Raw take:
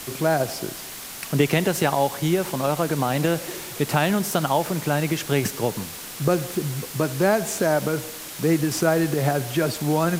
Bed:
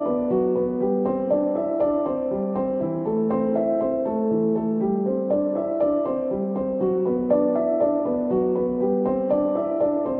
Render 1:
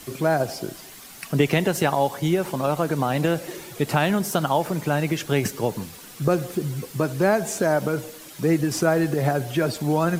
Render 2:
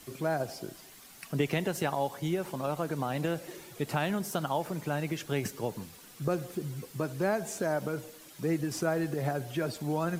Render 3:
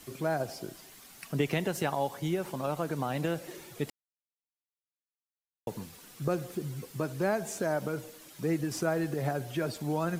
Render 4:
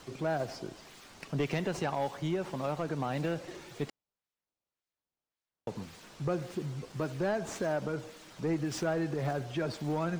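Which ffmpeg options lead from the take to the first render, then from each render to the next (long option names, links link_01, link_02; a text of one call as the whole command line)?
ffmpeg -i in.wav -af "afftdn=noise_reduction=9:noise_floor=-37" out.wav
ffmpeg -i in.wav -af "volume=-9.5dB" out.wav
ffmpeg -i in.wav -filter_complex "[0:a]asplit=3[link_01][link_02][link_03];[link_01]atrim=end=3.9,asetpts=PTS-STARTPTS,afade=type=out:start_time=3.896:duration=0.004:curve=hsin[link_04];[link_02]atrim=start=3.9:end=5.67,asetpts=PTS-STARTPTS,volume=0[link_05];[link_03]atrim=start=5.67,asetpts=PTS-STARTPTS,afade=type=in:duration=0.004:curve=hsin[link_06];[link_04][link_05][link_06]concat=n=3:v=0:a=1" out.wav
ffmpeg -i in.wav -filter_complex "[0:a]acrossover=split=7400[link_01][link_02];[link_01]asoftclip=type=tanh:threshold=-23dB[link_03];[link_02]acrusher=samples=15:mix=1:aa=0.000001:lfo=1:lforange=24:lforate=1.8[link_04];[link_03][link_04]amix=inputs=2:normalize=0" out.wav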